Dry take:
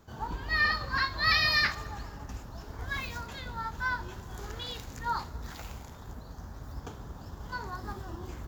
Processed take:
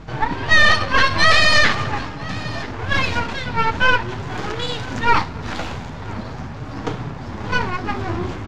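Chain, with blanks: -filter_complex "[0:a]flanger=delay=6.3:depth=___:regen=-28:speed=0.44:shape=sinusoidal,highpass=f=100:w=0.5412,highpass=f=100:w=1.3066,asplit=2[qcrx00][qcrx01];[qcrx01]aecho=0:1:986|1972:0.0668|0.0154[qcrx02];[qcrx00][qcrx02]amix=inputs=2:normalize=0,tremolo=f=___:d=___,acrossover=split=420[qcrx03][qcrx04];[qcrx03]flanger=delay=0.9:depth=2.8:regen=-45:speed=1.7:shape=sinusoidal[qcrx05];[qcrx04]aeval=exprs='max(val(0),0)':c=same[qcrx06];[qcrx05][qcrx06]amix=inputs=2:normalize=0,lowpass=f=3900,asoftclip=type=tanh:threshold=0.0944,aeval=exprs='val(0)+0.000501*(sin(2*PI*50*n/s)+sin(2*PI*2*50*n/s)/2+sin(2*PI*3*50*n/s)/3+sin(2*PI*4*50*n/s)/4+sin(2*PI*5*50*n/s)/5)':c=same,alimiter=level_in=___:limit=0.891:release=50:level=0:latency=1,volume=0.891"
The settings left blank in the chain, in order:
5.9, 1.6, 0.35, 25.1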